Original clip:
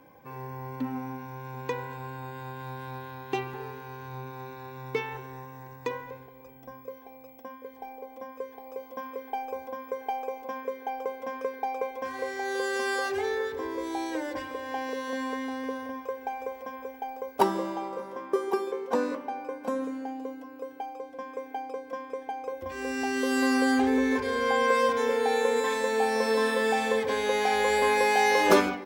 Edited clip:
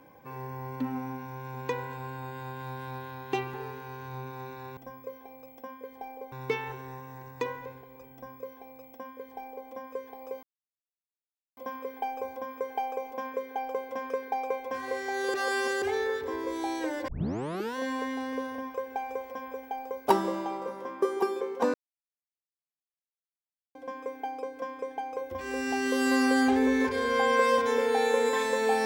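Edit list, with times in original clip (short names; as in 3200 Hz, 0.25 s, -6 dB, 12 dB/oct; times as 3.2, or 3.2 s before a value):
6.58–8.13 copy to 4.77
8.88 insert silence 1.14 s
12.65–13.13 reverse
14.39 tape start 0.68 s
19.05–21.06 mute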